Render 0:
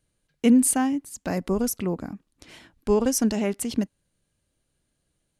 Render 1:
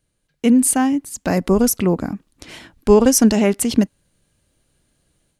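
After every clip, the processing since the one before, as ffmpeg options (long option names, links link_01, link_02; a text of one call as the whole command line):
ffmpeg -i in.wav -af "dynaudnorm=framelen=530:gausssize=3:maxgain=8dB,volume=2.5dB" out.wav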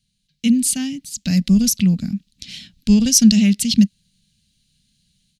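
ffmpeg -i in.wav -af "firequalizer=gain_entry='entry(100,0);entry(200,9);entry(330,-18);entry(650,-17);entry(960,-24);entry(1700,-7);entry(2600,5);entry(4000,13);entry(8900,0)':delay=0.05:min_phase=1,volume=-2.5dB" out.wav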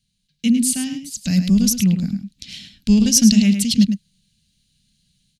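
ffmpeg -i in.wav -filter_complex "[0:a]asplit=2[link_01][link_02];[link_02]adelay=105,volume=-8dB,highshelf=frequency=4000:gain=-2.36[link_03];[link_01][link_03]amix=inputs=2:normalize=0,volume=-1dB" out.wav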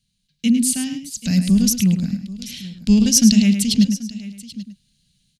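ffmpeg -i in.wav -af "aecho=1:1:784:0.133" out.wav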